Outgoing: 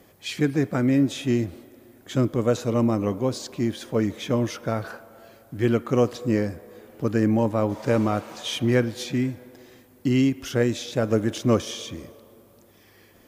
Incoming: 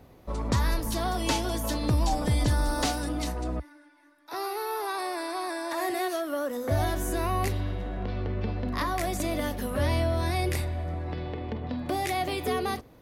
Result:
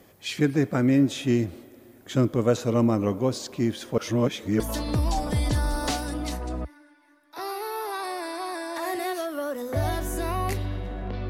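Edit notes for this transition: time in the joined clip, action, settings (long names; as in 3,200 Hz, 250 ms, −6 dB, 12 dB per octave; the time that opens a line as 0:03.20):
outgoing
0:03.98–0:04.60: reverse
0:04.60: continue with incoming from 0:01.55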